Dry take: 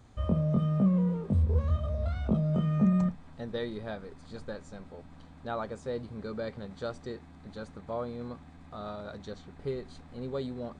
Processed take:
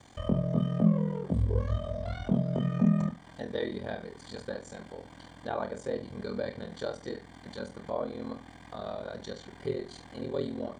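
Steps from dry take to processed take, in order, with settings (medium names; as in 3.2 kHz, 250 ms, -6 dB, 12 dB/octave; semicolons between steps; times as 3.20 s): comb of notches 1.3 kHz; flutter echo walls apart 6.3 m, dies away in 0.27 s; ring modulator 21 Hz; tape noise reduction on one side only encoder only; trim +4 dB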